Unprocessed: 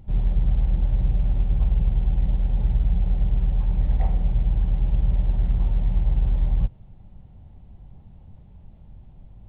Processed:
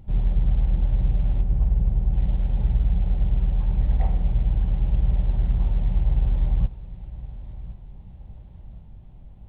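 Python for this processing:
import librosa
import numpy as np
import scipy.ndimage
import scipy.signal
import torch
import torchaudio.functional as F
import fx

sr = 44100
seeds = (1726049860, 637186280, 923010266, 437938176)

y = fx.lowpass(x, sr, hz=1000.0, slope=6, at=(1.4, 2.13), fade=0.02)
y = fx.echo_feedback(y, sr, ms=1065, feedback_pct=46, wet_db=-16.5)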